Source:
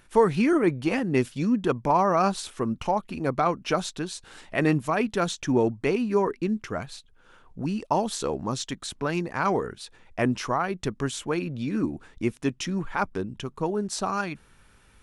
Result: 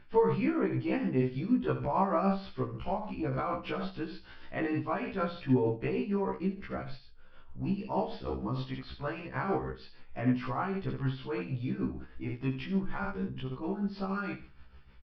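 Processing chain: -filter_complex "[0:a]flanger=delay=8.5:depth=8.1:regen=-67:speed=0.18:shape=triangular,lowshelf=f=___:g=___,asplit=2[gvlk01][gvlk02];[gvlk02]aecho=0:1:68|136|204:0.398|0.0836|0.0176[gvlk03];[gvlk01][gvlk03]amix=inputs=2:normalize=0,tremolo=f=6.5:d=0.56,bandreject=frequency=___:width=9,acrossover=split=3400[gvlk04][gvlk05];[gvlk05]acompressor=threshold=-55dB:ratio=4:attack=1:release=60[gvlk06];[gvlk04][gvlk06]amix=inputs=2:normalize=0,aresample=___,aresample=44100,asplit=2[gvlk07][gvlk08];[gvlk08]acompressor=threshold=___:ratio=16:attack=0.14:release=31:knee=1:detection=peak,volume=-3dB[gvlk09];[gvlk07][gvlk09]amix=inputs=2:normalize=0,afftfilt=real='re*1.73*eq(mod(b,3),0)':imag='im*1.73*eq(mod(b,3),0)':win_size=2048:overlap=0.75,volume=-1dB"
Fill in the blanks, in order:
96, 12, 3900, 11025, -35dB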